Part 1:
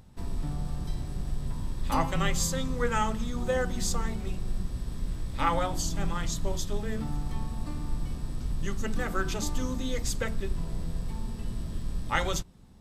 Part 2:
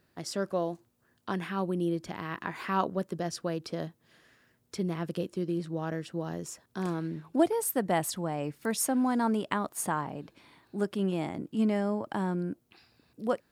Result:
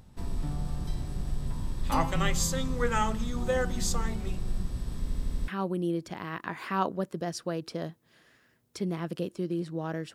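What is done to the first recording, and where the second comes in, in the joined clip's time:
part 1
5 stutter in place 0.08 s, 6 plays
5.48 switch to part 2 from 1.46 s

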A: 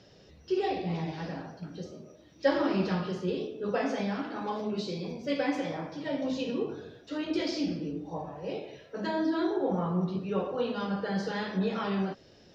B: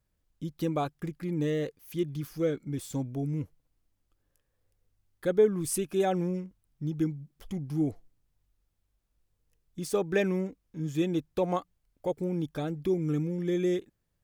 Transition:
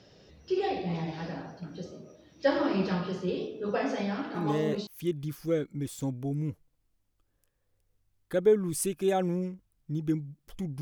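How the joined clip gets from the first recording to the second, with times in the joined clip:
A
4.61 switch to B from 1.53 s, crossfade 0.52 s logarithmic

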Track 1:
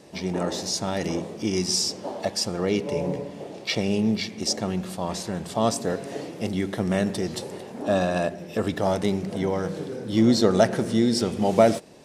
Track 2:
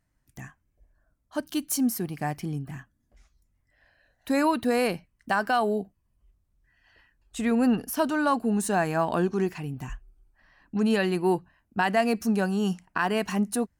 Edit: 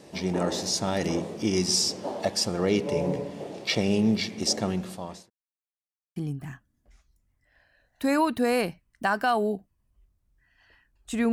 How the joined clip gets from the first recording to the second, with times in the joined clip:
track 1
4.65–5.3 fade out linear
5.3–6.16 mute
6.16 switch to track 2 from 2.42 s

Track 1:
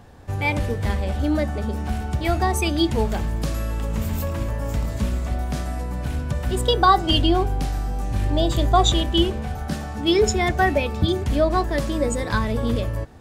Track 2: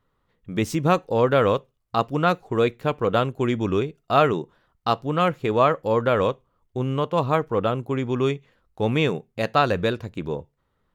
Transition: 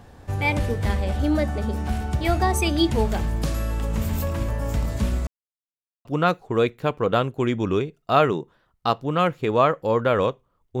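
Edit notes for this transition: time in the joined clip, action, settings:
track 1
5.27–6.05 mute
6.05 switch to track 2 from 2.06 s

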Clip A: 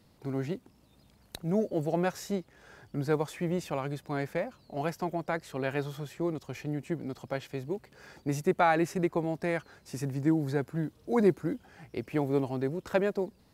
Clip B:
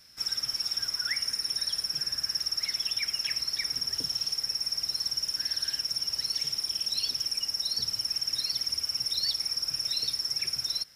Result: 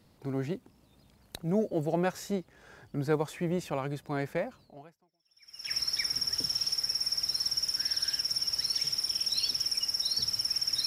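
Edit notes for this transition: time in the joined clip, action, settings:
clip A
5.18 switch to clip B from 2.78 s, crossfade 1.12 s exponential

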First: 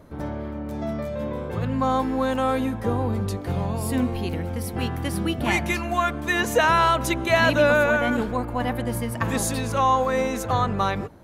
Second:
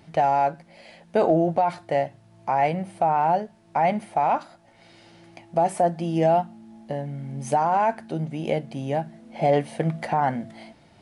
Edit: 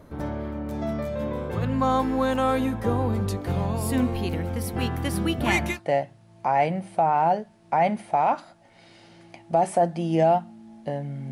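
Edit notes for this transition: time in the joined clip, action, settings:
first
5.73 switch to second from 1.76 s, crossfade 0.14 s

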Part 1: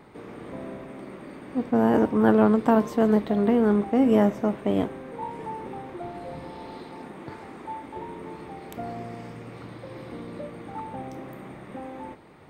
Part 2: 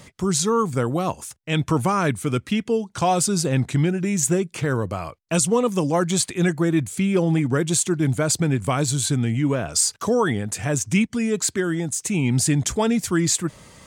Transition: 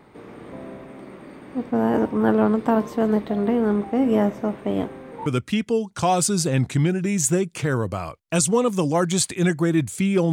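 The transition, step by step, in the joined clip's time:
part 1
5.26 switch to part 2 from 2.25 s

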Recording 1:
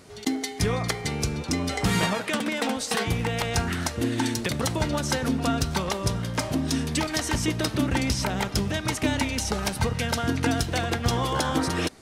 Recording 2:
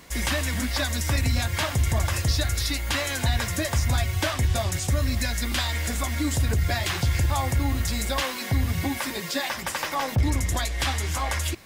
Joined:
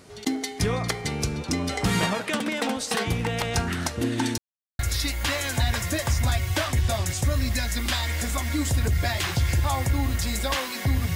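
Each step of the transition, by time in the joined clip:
recording 1
4.38–4.79 mute
4.79 switch to recording 2 from 2.45 s

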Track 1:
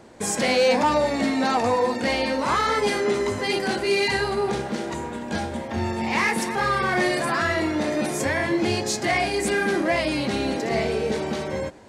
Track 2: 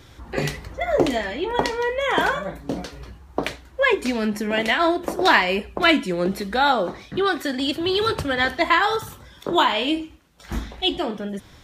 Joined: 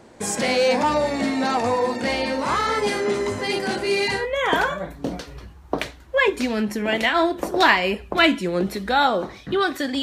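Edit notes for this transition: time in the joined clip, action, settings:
track 1
4.2 switch to track 2 from 1.85 s, crossfade 0.14 s

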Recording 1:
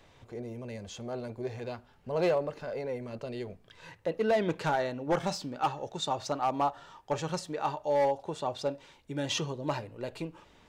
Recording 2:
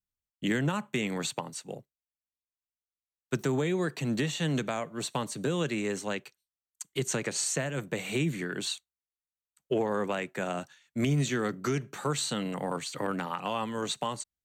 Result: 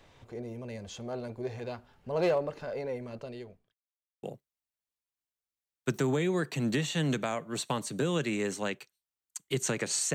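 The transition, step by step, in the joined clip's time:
recording 1
2.78–3.74 fade out equal-power
3.74–4.23 mute
4.23 switch to recording 2 from 1.68 s

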